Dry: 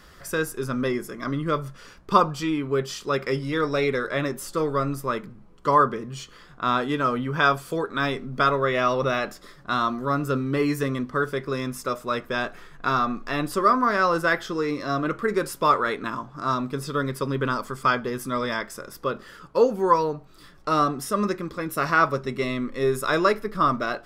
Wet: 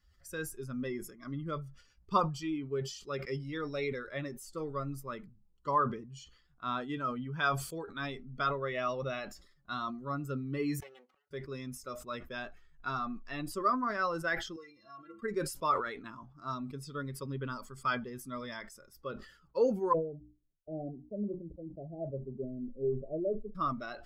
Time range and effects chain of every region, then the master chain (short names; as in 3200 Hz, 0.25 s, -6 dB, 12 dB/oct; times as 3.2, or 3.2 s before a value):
10.8–11.31 minimum comb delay 5.3 ms + HPF 430 Hz + flipped gate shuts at -30 dBFS, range -30 dB
14.56–15.22 HPF 48 Hz + metallic resonator 100 Hz, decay 0.27 s, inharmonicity 0.03 + three-band squash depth 40%
19.93–23.55 steep low-pass 720 Hz 72 dB/oct + gate -40 dBFS, range -31 dB + notches 60/120/180/240/300 Hz
whole clip: per-bin expansion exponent 1.5; high shelf 12000 Hz -5.5 dB; sustainer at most 96 dB/s; gain -8.5 dB